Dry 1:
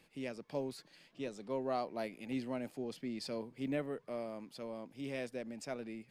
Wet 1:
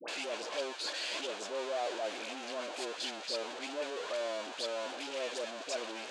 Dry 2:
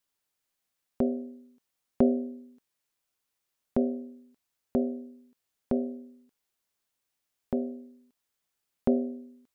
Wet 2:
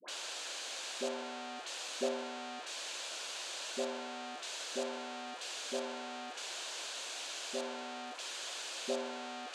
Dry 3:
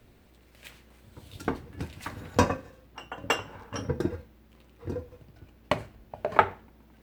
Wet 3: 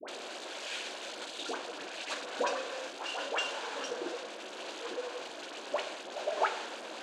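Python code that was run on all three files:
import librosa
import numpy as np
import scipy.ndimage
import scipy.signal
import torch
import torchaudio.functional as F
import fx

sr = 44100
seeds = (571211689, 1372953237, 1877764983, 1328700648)

y = x + 0.5 * 10.0 ** (-22.5 / 20.0) * np.sign(x)
y = fx.cabinet(y, sr, low_hz=410.0, low_slope=24, high_hz=6700.0, hz=(430.0, 850.0, 1200.0, 2000.0, 5400.0), db=(-5, -4, -6, -8, -6))
y = fx.dispersion(y, sr, late='highs', ms=84.0, hz=910.0)
y = y * librosa.db_to_amplitude(-5.5)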